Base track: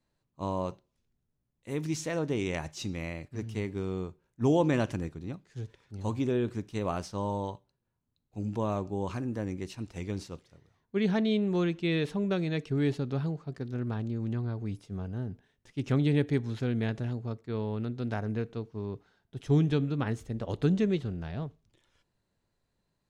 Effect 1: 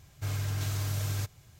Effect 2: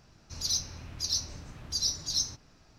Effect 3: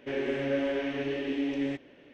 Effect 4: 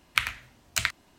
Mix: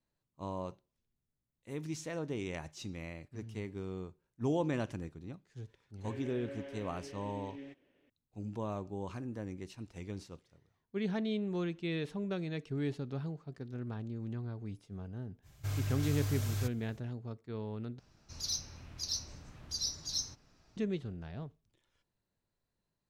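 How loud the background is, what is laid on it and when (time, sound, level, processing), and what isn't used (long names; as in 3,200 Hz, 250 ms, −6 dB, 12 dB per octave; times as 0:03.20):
base track −7.5 dB
0:05.97: mix in 3 −17 dB
0:15.42: mix in 1 −5 dB, fades 0.05 s + low-shelf EQ 69 Hz +7 dB
0:17.99: overwrite with 2 −6.5 dB
not used: 4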